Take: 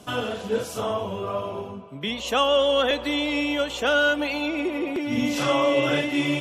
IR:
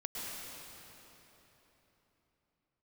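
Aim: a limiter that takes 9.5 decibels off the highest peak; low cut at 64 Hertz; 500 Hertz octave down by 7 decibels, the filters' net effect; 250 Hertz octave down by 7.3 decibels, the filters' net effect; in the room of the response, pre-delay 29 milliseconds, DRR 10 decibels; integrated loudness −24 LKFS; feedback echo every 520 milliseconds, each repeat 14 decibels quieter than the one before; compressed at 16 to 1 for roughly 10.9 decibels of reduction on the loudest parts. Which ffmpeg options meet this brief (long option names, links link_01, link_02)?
-filter_complex "[0:a]highpass=64,equalizer=frequency=250:width_type=o:gain=-6.5,equalizer=frequency=500:width_type=o:gain=-7,acompressor=threshold=-29dB:ratio=16,alimiter=level_in=6dB:limit=-24dB:level=0:latency=1,volume=-6dB,aecho=1:1:520|1040:0.2|0.0399,asplit=2[link_01][link_02];[1:a]atrim=start_sample=2205,adelay=29[link_03];[link_02][link_03]afir=irnorm=-1:irlink=0,volume=-12dB[link_04];[link_01][link_04]amix=inputs=2:normalize=0,volume=13dB"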